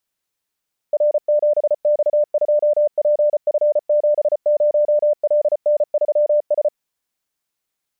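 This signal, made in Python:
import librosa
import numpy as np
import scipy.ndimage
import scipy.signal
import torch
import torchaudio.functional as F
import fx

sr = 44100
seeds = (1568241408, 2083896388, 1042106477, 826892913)

y = fx.morse(sr, text='R7X2PF70LN3S', wpm=34, hz=595.0, level_db=-12.0)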